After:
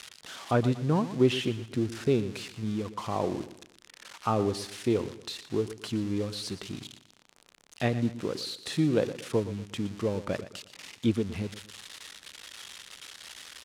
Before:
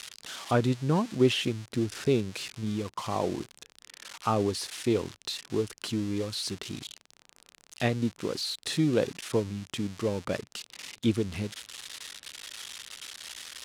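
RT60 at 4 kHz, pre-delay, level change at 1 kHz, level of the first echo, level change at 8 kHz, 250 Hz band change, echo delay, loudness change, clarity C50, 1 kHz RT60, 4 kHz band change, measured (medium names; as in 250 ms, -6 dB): no reverb, no reverb, -0.5 dB, -14.0 dB, -4.5 dB, 0.0 dB, 118 ms, +0.5 dB, no reverb, no reverb, -3.5 dB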